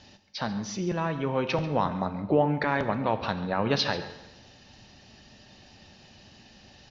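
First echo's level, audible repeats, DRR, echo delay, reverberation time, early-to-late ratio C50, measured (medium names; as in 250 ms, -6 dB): -16.0 dB, 1, 9.0 dB, 138 ms, 1.1 s, 10.5 dB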